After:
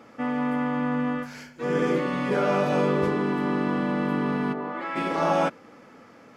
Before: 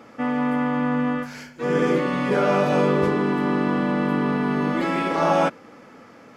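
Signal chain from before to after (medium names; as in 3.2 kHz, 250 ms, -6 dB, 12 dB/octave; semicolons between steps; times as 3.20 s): 4.52–4.95 s: band-pass filter 540 Hz -> 1.6 kHz, Q 0.96; trim -3.5 dB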